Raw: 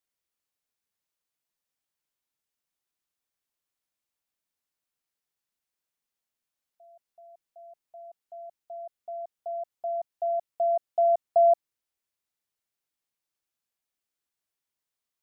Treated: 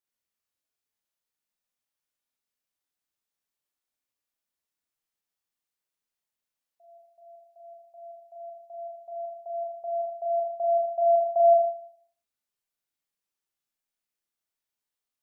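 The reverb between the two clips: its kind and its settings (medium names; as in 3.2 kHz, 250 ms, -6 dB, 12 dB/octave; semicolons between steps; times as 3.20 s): Schroeder reverb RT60 0.6 s, combs from 26 ms, DRR -1 dB; trim -5 dB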